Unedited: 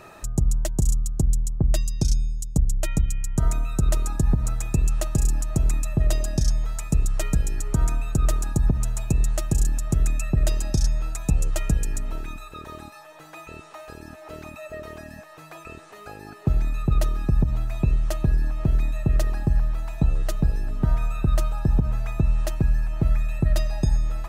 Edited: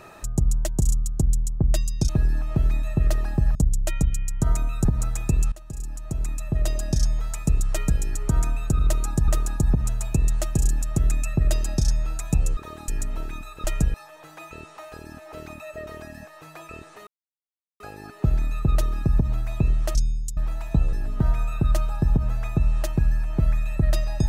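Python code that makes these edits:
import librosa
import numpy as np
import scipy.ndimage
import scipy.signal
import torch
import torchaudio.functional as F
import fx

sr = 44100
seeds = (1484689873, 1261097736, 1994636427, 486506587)

y = fx.edit(x, sr, fx.swap(start_s=2.09, length_s=0.42, other_s=18.18, other_length_s=1.46),
    fx.move(start_s=3.81, length_s=0.49, to_s=8.24),
    fx.fade_in_from(start_s=4.97, length_s=1.5, floor_db=-20.5),
    fx.swap(start_s=11.53, length_s=0.3, other_s=12.59, other_length_s=0.31),
    fx.insert_silence(at_s=16.03, length_s=0.73),
    fx.cut(start_s=20.2, length_s=0.36), tone=tone)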